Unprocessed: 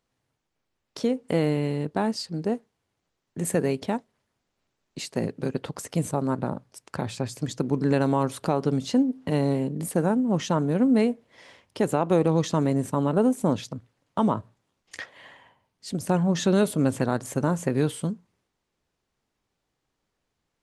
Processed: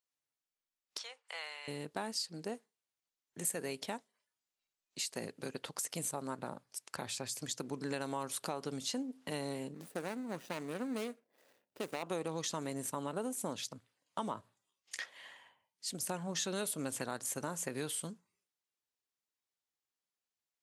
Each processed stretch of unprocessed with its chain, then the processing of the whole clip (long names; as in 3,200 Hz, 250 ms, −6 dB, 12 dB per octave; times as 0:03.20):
0:00.98–0:01.68: high-pass filter 850 Hz 24 dB per octave + high-frequency loss of the air 96 metres
0:09.74–0:12.03: running median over 41 samples + parametric band 86 Hz −9 dB 1.8 octaves
whole clip: noise reduction from a noise print of the clip's start 11 dB; spectral tilt +3.5 dB per octave; downward compressor 2.5 to 1, threshold −27 dBFS; level −8 dB